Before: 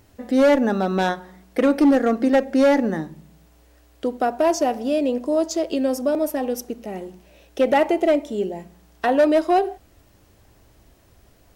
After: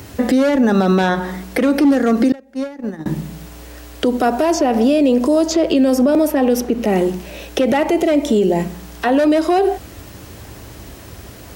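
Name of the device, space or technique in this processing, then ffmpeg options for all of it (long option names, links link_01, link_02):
mastering chain: -filter_complex "[0:a]highpass=59,equalizer=frequency=680:width_type=o:width=0.77:gain=-3,acrossover=split=180|3500[link_01][link_02][link_03];[link_01]acompressor=threshold=-34dB:ratio=4[link_04];[link_02]acompressor=threshold=-26dB:ratio=4[link_05];[link_03]acompressor=threshold=-49dB:ratio=4[link_06];[link_04][link_05][link_06]amix=inputs=3:normalize=0,acompressor=threshold=-29dB:ratio=1.5,alimiter=level_in=26dB:limit=-1dB:release=50:level=0:latency=1,asettb=1/sr,asplit=3[link_07][link_08][link_09];[link_07]atrim=end=2.324[link_10];[link_08]atrim=start=2.32:end=3.06,asetpts=PTS-STARTPTS,afade=type=in:duration=0.004:curve=qsin,afade=type=out:start_time=0.736:duration=0.004:curve=qsin,agate=range=-28dB:threshold=-5dB:ratio=16:detection=peak[link_11];[link_09]atrim=start=3.056[link_12];[link_10][link_11]acrossfade=duration=0.004:curve1=hsin:curve2=qsin[link_13];[link_13][link_12]acrossfade=duration=0.004:curve1=qsin:curve2=hsin,volume=-6dB"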